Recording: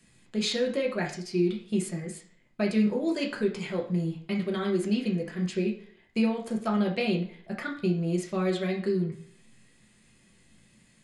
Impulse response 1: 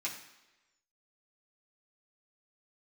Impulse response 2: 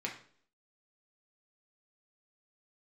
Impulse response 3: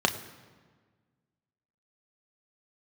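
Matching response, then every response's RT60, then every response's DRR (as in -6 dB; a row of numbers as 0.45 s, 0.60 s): 2; 1.1 s, 0.55 s, 1.5 s; -5.5 dB, -1.5 dB, 5.0 dB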